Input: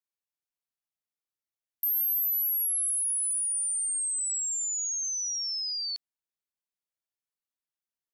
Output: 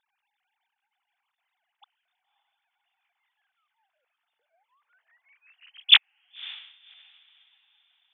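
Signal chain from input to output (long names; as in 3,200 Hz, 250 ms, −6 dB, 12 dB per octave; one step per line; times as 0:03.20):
three sine waves on the formant tracks
feedback delay with all-pass diffusion 561 ms, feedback 41%, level −12 dB
expander for the loud parts 1.5 to 1, over −44 dBFS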